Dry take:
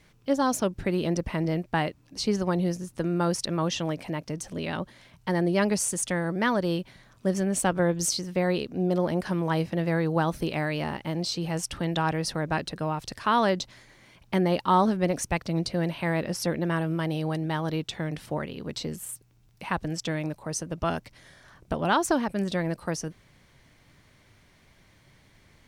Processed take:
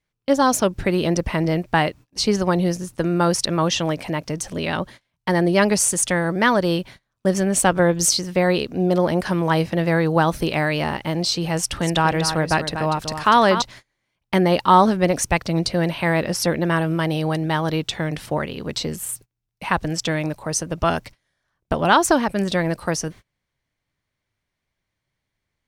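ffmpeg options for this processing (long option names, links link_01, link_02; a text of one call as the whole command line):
ffmpeg -i in.wav -filter_complex "[0:a]asettb=1/sr,asplit=3[link_01][link_02][link_03];[link_01]atrim=end=11.574[link_04];[link_02]atrim=start=11.57:end=13.62,asetpts=PTS-STARTPTS,afade=type=in:duration=0.004:curve=qsin,afade=type=out:start_time=2.046:duration=0.004:curve=qsin,aecho=1:1:242:0.355,atrim=end_sample=90405[link_05];[link_03]atrim=start=13.616[link_06];[link_04][link_05]acrossfade=duration=0.004:curve1=hsin:curve2=qsin[link_07];[link_07][link_06]acrossfade=duration=0.004:curve1=qsin:curve2=hsin,equalizer=frequency=220:width=0.62:gain=-3.5,agate=range=-29dB:threshold=-47dB:ratio=16:detection=peak,volume=9dB" out.wav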